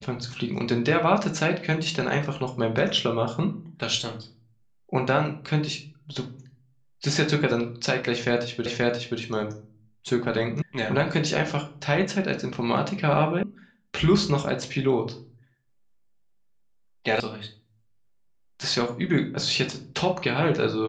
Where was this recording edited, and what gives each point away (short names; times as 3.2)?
8.66 repeat of the last 0.53 s
10.62 sound cut off
13.43 sound cut off
17.2 sound cut off